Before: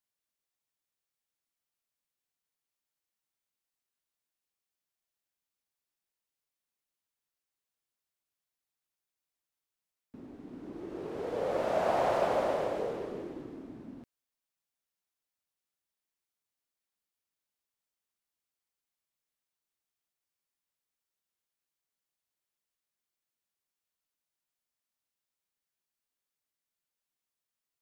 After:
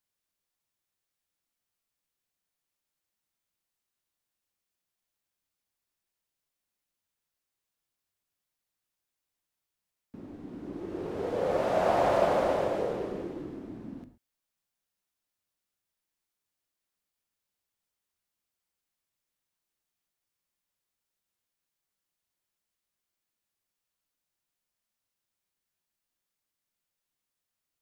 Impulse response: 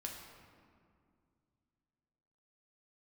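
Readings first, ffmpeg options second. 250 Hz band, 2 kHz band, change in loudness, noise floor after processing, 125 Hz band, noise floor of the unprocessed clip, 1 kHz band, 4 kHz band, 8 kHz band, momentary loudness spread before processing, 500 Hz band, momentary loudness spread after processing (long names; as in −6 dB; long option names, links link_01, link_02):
+4.5 dB, +3.0 dB, +3.0 dB, below −85 dBFS, +6.0 dB, below −85 dBFS, +3.0 dB, +3.0 dB, can't be measured, 19 LU, +3.5 dB, 19 LU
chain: -filter_complex "[0:a]asplit=2[link_01][link_02];[1:a]atrim=start_sample=2205,atrim=end_sample=6174,lowshelf=frequency=250:gain=7.5[link_03];[link_02][link_03]afir=irnorm=-1:irlink=0,volume=0dB[link_04];[link_01][link_04]amix=inputs=2:normalize=0,volume=-1.5dB"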